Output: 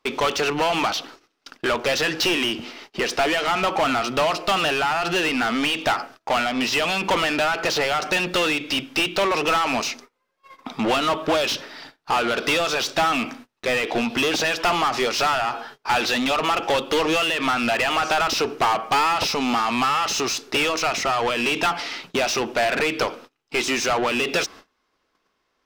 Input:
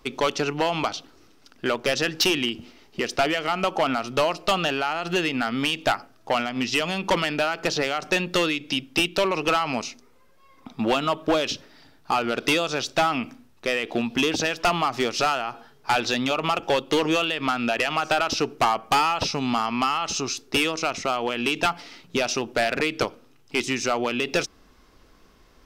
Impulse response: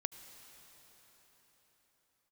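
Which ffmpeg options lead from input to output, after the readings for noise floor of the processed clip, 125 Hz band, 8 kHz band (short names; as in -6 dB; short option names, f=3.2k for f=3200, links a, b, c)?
-72 dBFS, -1.5 dB, +3.0 dB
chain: -filter_complex "[0:a]asplit=2[a][b];[b]highpass=f=720:p=1,volume=22dB,asoftclip=type=tanh:threshold=-15dB[c];[a][c]amix=inputs=2:normalize=0,lowpass=f=4.1k:p=1,volume=-6dB,agate=range=-26dB:threshold=-41dB:ratio=16:detection=peak"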